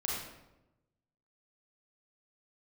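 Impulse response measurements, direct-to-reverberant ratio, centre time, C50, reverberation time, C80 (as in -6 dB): -4.5 dB, 68 ms, -0.5 dB, 0.95 s, 3.0 dB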